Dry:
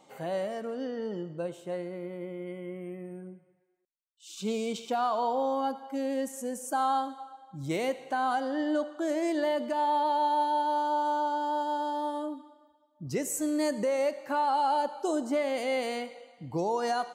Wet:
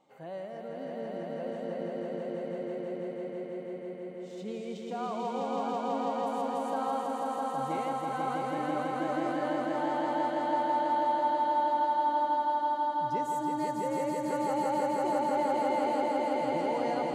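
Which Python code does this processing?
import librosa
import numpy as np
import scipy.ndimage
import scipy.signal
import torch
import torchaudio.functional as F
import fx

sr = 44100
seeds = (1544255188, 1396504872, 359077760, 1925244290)

p1 = fx.high_shelf(x, sr, hz=4600.0, db=-12.0)
p2 = p1 + fx.echo_swell(p1, sr, ms=164, loudest=5, wet_db=-3.0, dry=0)
y = F.gain(torch.from_numpy(p2), -8.0).numpy()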